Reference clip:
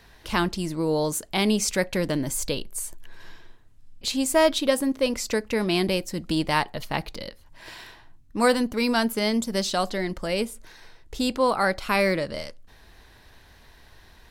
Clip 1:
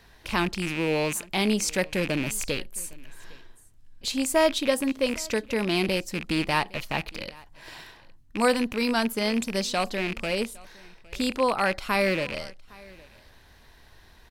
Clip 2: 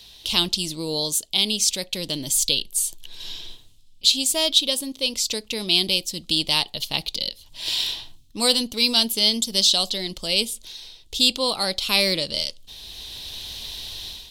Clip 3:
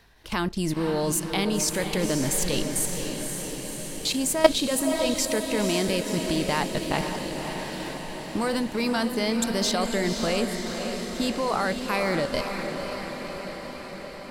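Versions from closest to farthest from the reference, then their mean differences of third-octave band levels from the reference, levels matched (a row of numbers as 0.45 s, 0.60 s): 1, 2, 3; 2.5 dB, 8.0 dB, 10.5 dB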